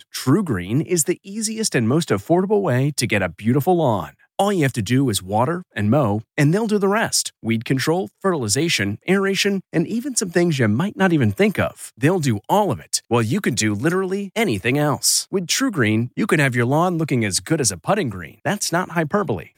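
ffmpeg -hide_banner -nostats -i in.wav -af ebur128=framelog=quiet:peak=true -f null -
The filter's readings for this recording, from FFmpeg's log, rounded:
Integrated loudness:
  I:         -19.7 LUFS
  Threshold: -29.7 LUFS
Loudness range:
  LRA:         1.2 LU
  Threshold: -39.5 LUFS
  LRA low:   -20.0 LUFS
  LRA high:  -18.8 LUFS
True peak:
  Peak:       -3.8 dBFS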